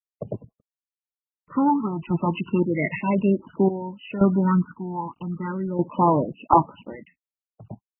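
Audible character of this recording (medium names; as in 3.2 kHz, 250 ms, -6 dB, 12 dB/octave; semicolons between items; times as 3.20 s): a quantiser's noise floor 10-bit, dither none; phasing stages 6, 0.35 Hz, lowest notch 460–2000 Hz; random-step tremolo 1.9 Hz, depth 80%; MP3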